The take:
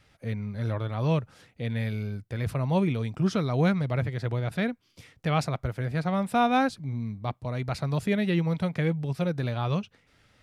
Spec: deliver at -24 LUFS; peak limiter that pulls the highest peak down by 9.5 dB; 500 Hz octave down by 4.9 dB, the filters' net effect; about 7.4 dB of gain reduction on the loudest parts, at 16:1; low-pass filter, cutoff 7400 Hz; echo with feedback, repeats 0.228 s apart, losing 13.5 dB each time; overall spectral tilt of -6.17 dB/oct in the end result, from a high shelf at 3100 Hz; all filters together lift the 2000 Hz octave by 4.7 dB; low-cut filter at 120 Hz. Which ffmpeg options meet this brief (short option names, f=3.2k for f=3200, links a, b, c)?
-af "highpass=120,lowpass=7.4k,equalizer=f=500:t=o:g=-6.5,equalizer=f=2k:t=o:g=8.5,highshelf=f=3.1k:g=-6,acompressor=threshold=-27dB:ratio=16,alimiter=level_in=2dB:limit=-24dB:level=0:latency=1,volume=-2dB,aecho=1:1:228|456:0.211|0.0444,volume=12.5dB"